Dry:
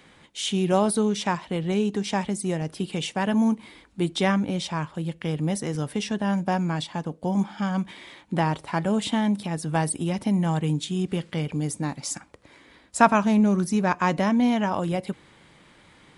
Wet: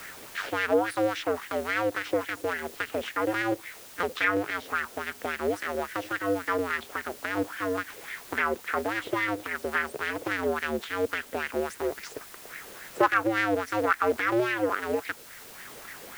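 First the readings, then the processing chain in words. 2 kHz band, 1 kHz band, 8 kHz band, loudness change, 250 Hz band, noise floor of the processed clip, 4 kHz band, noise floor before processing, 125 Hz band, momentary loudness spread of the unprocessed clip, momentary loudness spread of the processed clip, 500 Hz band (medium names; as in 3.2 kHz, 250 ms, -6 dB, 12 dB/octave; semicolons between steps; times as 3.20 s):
+5.0 dB, -2.5 dB, -9.5 dB, -3.5 dB, -10.5 dB, -47 dBFS, -5.5 dB, -55 dBFS, -17.5 dB, 9 LU, 14 LU, 0.0 dB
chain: cycle switcher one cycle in 2, inverted; high-order bell 780 Hz -8.5 dB 1.3 oct; wah-wah 3.6 Hz 520–1900 Hz, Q 3.4; in parallel at -10.5 dB: word length cut 8-bit, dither triangular; on the sum: three bands compressed up and down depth 40%; trim +8 dB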